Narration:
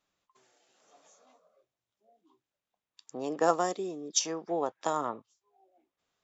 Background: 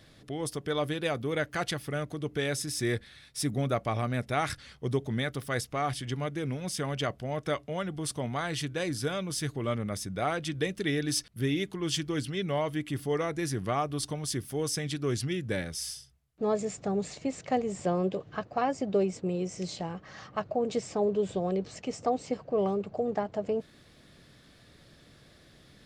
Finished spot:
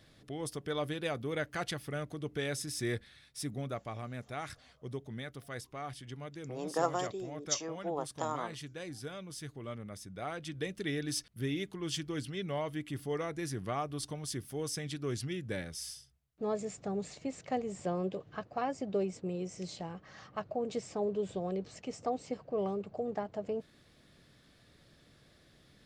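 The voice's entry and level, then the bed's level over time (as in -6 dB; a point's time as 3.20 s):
3.35 s, -5.5 dB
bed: 2.98 s -5 dB
3.97 s -11.5 dB
10.02 s -11.5 dB
10.79 s -6 dB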